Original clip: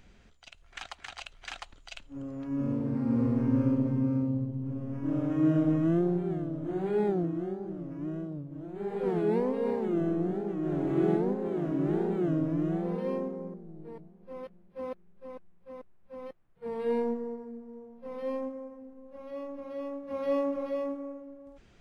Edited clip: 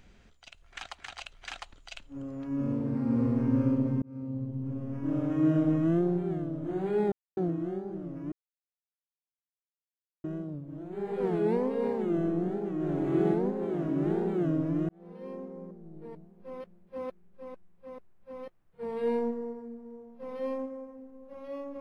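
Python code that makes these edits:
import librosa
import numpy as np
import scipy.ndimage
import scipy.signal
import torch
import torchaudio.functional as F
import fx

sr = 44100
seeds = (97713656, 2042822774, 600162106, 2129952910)

y = fx.edit(x, sr, fx.fade_in_span(start_s=4.02, length_s=0.56),
    fx.insert_silence(at_s=7.12, length_s=0.25),
    fx.insert_silence(at_s=8.07, length_s=1.92),
    fx.fade_in_span(start_s=12.72, length_s=1.16), tone=tone)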